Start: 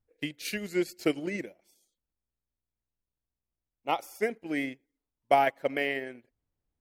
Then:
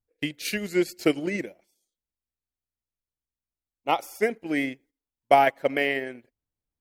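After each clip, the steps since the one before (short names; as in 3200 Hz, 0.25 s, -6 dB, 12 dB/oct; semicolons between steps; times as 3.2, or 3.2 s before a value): gate -59 dBFS, range -11 dB; gain +5 dB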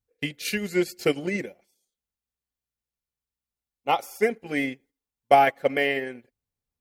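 notch comb 320 Hz; gain +2 dB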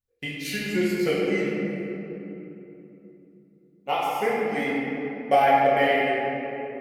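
shoebox room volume 160 m³, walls hard, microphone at 1 m; gain -6.5 dB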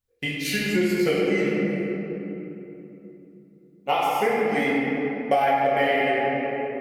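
compressor 6:1, threshold -22 dBFS, peak gain reduction 8.5 dB; gain +4.5 dB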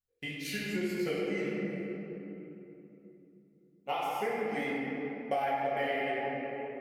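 flange 1.9 Hz, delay 4.6 ms, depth 5.4 ms, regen -73%; gain -6.5 dB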